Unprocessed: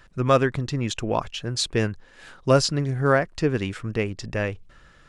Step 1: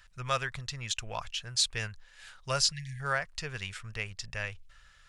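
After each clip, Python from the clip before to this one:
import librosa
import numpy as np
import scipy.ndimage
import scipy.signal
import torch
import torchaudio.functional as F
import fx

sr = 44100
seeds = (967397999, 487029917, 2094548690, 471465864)

y = fx.spec_erase(x, sr, start_s=2.72, length_s=0.28, low_hz=270.0, high_hz=1600.0)
y = fx.tone_stack(y, sr, knobs='10-0-10')
y = fx.notch(y, sr, hz=1100.0, q=29.0)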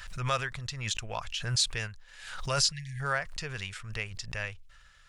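y = fx.pre_swell(x, sr, db_per_s=60.0)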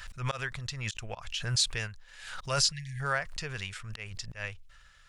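y = fx.auto_swell(x, sr, attack_ms=124.0)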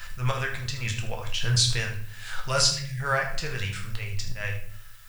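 y = fx.dmg_noise_colour(x, sr, seeds[0], colour='blue', level_db=-60.0)
y = y + 10.0 ** (-13.0 / 20.0) * np.pad(y, (int(77 * sr / 1000.0), 0))[:len(y)]
y = fx.room_shoebox(y, sr, seeds[1], volume_m3=85.0, walls='mixed', distance_m=0.66)
y = F.gain(torch.from_numpy(y), 2.5).numpy()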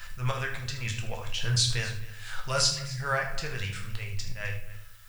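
y = x + 10.0 ** (-18.0 / 20.0) * np.pad(x, (int(259 * sr / 1000.0), 0))[:len(x)]
y = F.gain(torch.from_numpy(y), -3.0).numpy()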